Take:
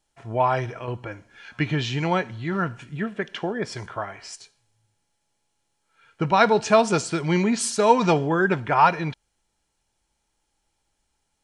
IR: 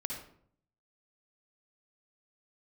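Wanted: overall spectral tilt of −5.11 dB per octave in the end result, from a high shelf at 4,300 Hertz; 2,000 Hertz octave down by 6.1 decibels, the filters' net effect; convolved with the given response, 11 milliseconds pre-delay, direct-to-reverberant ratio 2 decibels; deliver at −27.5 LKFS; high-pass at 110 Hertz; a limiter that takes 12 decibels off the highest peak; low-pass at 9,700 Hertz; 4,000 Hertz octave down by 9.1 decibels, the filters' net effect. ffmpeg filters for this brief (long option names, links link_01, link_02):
-filter_complex "[0:a]highpass=110,lowpass=9700,equalizer=frequency=2000:width_type=o:gain=-6.5,equalizer=frequency=4000:width_type=o:gain=-7.5,highshelf=frequency=4300:gain=-4,alimiter=limit=-16.5dB:level=0:latency=1,asplit=2[link_01][link_02];[1:a]atrim=start_sample=2205,adelay=11[link_03];[link_02][link_03]afir=irnorm=-1:irlink=0,volume=-3dB[link_04];[link_01][link_04]amix=inputs=2:normalize=0,volume=-1.5dB"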